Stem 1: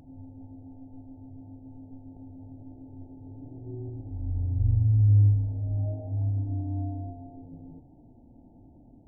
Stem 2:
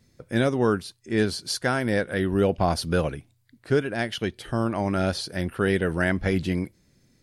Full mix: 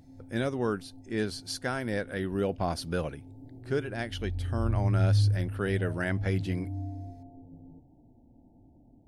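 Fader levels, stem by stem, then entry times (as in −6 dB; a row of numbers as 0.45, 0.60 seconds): −4.5, −7.5 decibels; 0.00, 0.00 seconds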